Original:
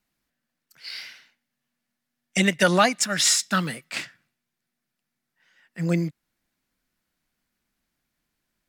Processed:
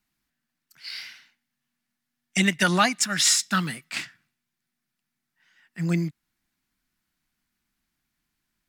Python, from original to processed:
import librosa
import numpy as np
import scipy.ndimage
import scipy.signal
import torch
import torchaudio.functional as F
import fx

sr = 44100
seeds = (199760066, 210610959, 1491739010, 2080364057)

y = fx.peak_eq(x, sr, hz=520.0, db=-11.0, octaves=0.67)